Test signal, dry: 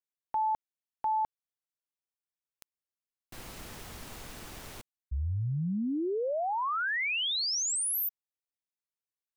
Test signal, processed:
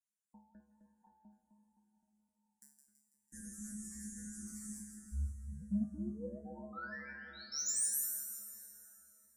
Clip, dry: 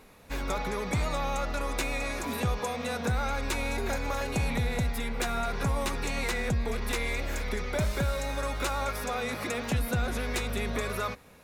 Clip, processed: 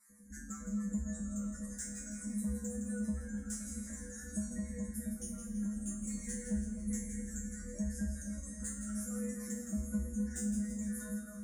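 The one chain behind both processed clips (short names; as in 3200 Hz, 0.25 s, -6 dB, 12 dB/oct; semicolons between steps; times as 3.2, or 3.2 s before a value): random spectral dropouts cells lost 24%; EQ curve 120 Hz 0 dB, 200 Hz +13 dB, 490 Hz -6 dB, 1100 Hz -9 dB, 1800 Hz +4 dB, 3000 Hz -18 dB, 6800 Hz +13 dB, 10000 Hz +12 dB, 15000 Hz -3 dB; spectral gate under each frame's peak -20 dB strong; in parallel at -1.5 dB: compressor, threshold -37 dBFS; on the sum: fixed phaser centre 560 Hz, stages 8; soft clip -18.5 dBFS; resonator 70 Hz, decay 0.45 s, harmonics odd, mix 100%; on a send: split-band echo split 1800 Hz, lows 0.259 s, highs 0.165 s, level -7 dB; on the sum: plate-style reverb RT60 4.7 s, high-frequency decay 0.65×, DRR 9.5 dB; cascading phaser falling 1.3 Hz; gain +1.5 dB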